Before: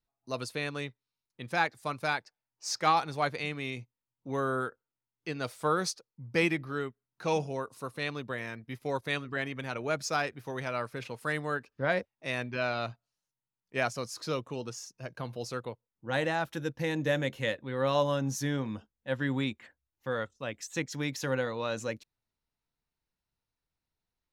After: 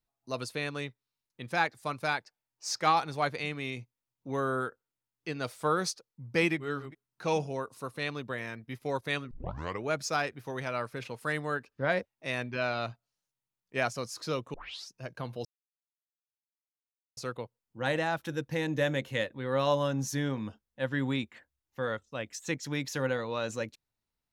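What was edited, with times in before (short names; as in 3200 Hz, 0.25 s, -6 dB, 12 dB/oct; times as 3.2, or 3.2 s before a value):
6.62–6.87 reverse, crossfade 0.16 s
9.31 tape start 0.52 s
14.54 tape start 0.36 s
15.45 insert silence 1.72 s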